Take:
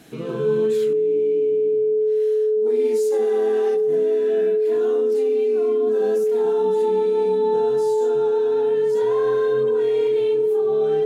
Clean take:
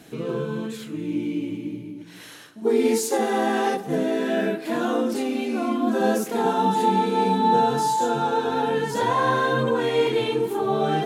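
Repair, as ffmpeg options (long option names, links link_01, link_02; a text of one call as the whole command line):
ffmpeg -i in.wav -af "bandreject=frequency=430:width=30,asetnsamples=nb_out_samples=441:pad=0,asendcmd='0.93 volume volume 10.5dB',volume=0dB" out.wav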